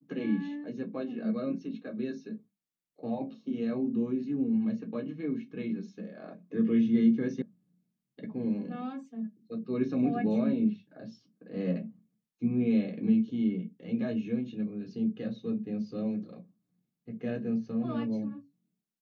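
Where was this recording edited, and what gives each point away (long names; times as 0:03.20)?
0:07.42: cut off before it has died away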